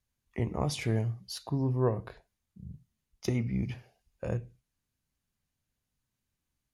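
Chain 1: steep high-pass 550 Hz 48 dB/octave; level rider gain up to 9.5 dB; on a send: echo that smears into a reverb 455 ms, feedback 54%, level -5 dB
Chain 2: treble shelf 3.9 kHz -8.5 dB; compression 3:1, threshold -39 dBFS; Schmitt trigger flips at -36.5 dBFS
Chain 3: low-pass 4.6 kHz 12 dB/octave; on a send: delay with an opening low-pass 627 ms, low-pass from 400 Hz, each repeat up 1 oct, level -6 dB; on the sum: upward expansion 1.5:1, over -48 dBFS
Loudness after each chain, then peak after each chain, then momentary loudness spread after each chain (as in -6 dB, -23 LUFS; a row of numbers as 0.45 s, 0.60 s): -33.5 LUFS, -50.5 LUFS, -36.5 LUFS; -12.0 dBFS, -38.0 dBFS, -16.5 dBFS; 18 LU, 14 LU, 21 LU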